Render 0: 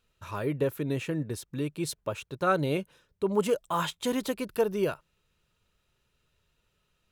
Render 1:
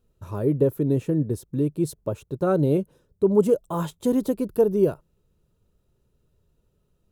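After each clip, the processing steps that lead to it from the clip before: EQ curve 400 Hz 0 dB, 2300 Hz -21 dB, 12000 Hz -8 dB; gain +8.5 dB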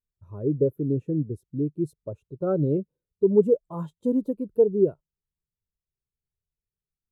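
spectral expander 1.5:1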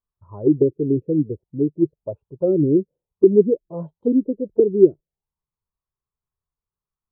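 envelope low-pass 340–1100 Hz down, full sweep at -20.5 dBFS

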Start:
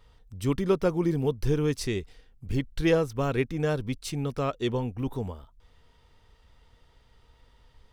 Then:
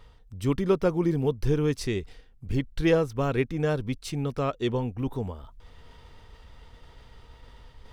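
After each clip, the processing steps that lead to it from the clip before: high shelf 4800 Hz -4.5 dB; reverse; upward compressor, threshold -39 dBFS; reverse; gain +1 dB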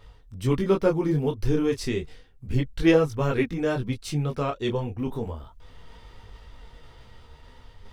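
detuned doubles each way 11 cents; gain +5.5 dB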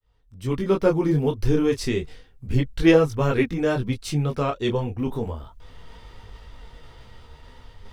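opening faded in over 0.93 s; gain +3 dB

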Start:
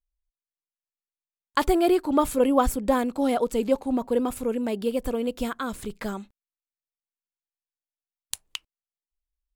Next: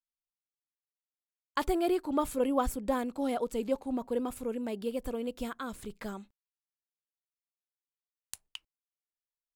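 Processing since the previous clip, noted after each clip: gate with hold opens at -46 dBFS; gain -8 dB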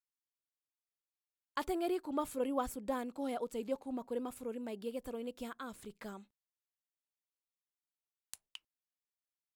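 low shelf 80 Hz -11.5 dB; gain -6 dB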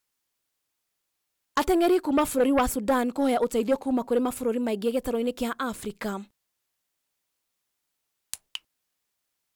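sine folder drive 7 dB, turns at -20.5 dBFS; gain +4.5 dB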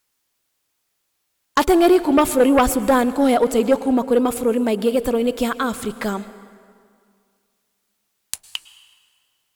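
plate-style reverb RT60 2.1 s, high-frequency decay 0.75×, pre-delay 95 ms, DRR 15 dB; gain +7.5 dB

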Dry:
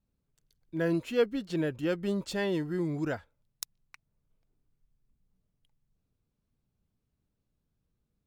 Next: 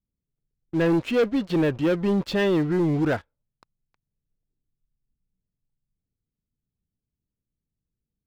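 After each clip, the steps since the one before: low-pass opened by the level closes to 430 Hz, open at -29 dBFS; LPF 3900 Hz 12 dB/oct; sample leveller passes 3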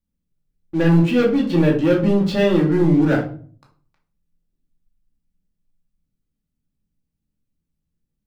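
reverb RT60 0.45 s, pre-delay 3 ms, DRR -2 dB

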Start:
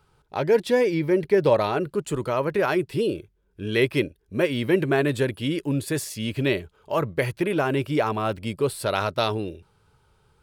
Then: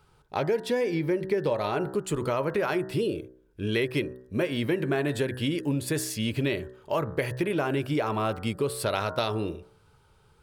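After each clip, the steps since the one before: de-hum 63.09 Hz, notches 30; compressor 5:1, threshold -25 dBFS, peak gain reduction 10.5 dB; gain +1.5 dB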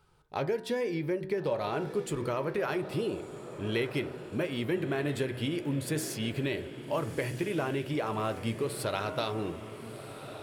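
flange 0.64 Hz, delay 5.1 ms, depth 4 ms, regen +82%; diffused feedback echo 1.298 s, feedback 57%, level -12 dB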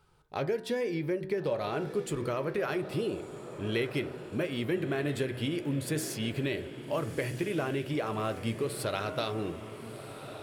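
dynamic EQ 920 Hz, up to -5 dB, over -51 dBFS, Q 4.6

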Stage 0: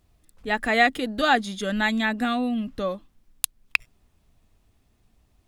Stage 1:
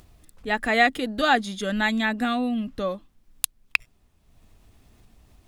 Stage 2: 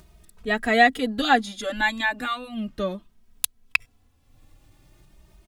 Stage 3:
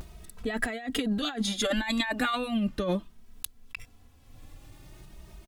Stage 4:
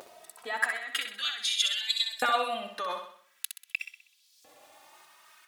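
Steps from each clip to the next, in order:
upward compressor, threshold -44 dBFS
endless flanger 2.8 ms +0.37 Hz; gain +3.5 dB
negative-ratio compressor -30 dBFS, ratio -1; vibrato 0.64 Hz 43 cents
LFO high-pass saw up 0.45 Hz 530–5200 Hz; on a send: flutter echo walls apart 10.9 m, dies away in 0.55 s

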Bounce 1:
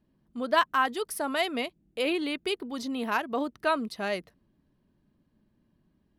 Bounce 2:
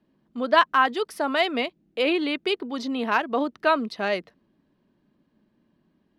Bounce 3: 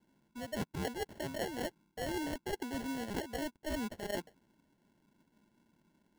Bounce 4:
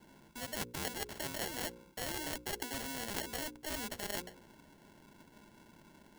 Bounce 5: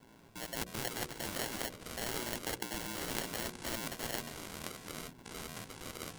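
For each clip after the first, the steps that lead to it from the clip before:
three-band isolator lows -13 dB, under 170 Hz, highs -16 dB, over 5700 Hz; gain +5.5 dB
sample-and-hold 36×; reverse; compressor 10:1, threshold -30 dBFS, peak gain reduction 18.5 dB; reverse; gain -4.5 dB
notches 60/120/180/240/300/360/420/480/540 Hz; spectral compressor 2:1; gain +7.5 dB
ring modulator 58 Hz; echoes that change speed 0.161 s, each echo -6 st, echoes 2, each echo -6 dB; gain +3 dB

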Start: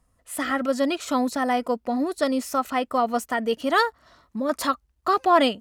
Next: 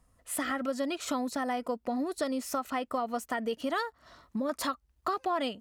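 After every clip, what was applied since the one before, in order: compressor 4:1, threshold -30 dBFS, peak gain reduction 14.5 dB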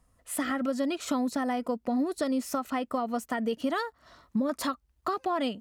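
dynamic EQ 200 Hz, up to +6 dB, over -45 dBFS, Q 0.81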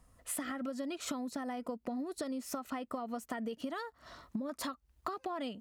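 compressor 10:1, threshold -38 dBFS, peak gain reduction 14 dB; gain +2.5 dB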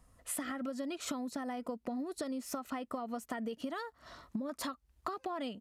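downsampling 32000 Hz

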